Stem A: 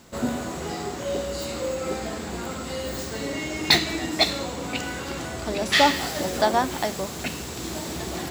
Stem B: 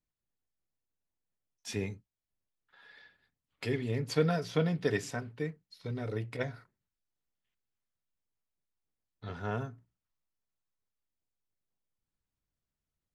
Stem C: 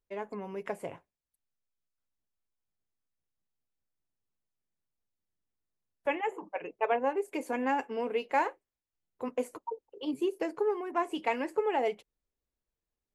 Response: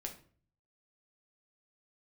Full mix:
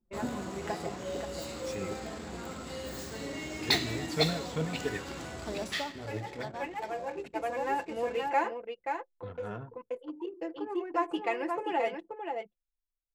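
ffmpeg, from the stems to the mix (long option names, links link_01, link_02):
-filter_complex "[0:a]volume=-9.5dB,afade=type=out:start_time=5.59:duration=0.26:silence=0.251189,asplit=3[link_01][link_02][link_03];[link_02]volume=-16dB[link_04];[link_03]volume=-19dB[link_05];[1:a]flanger=delay=0:depth=6.7:regen=51:speed=1.3:shape=triangular,volume=-1dB,asplit=3[link_06][link_07][link_08];[link_06]atrim=end=5.01,asetpts=PTS-STARTPTS,afade=type=out:start_time=5.006:duration=0.004:curve=hsin[link_09];[link_07]atrim=start=5.01:end=5.95,asetpts=PTS-STARTPTS,volume=0[link_10];[link_08]atrim=start=5.95,asetpts=PTS-STARTPTS,afade=type=in:duration=0.004:curve=hsin[link_11];[link_09][link_10][link_11]concat=n=3:v=0:a=1,asplit=2[link_12][link_13];[2:a]aecho=1:1:5.9:0.76,volume=-5dB,asplit=3[link_14][link_15][link_16];[link_15]volume=-7.5dB[link_17];[link_16]volume=-4dB[link_18];[link_13]apad=whole_len=580121[link_19];[link_14][link_19]sidechaincompress=threshold=-59dB:ratio=16:attack=28:release=869[link_20];[3:a]atrim=start_sample=2205[link_21];[link_04][link_17]amix=inputs=2:normalize=0[link_22];[link_22][link_21]afir=irnorm=-1:irlink=0[link_23];[link_05][link_18]amix=inputs=2:normalize=0,aecho=0:1:530:1[link_24];[link_01][link_12][link_20][link_23][link_24]amix=inputs=5:normalize=0,anlmdn=0.0251"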